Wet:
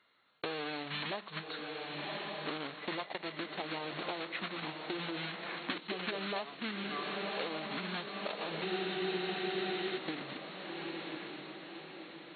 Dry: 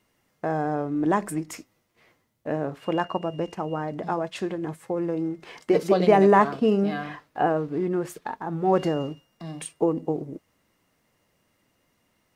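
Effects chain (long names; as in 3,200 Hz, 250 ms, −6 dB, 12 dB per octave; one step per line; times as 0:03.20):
one scale factor per block 3 bits
formants moved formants −6 semitones
high-pass filter 1,400 Hz 6 dB per octave
on a send: feedback delay with all-pass diffusion 1,111 ms, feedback 48%, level −10 dB
on the sum: downward compressor 8 to 1, threshold −38 dBFS, peak gain reduction 19.5 dB
linear-phase brick-wall low-pass 4,400 Hz
frozen spectrum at 0:08.67, 1.30 s
level +4.5 dB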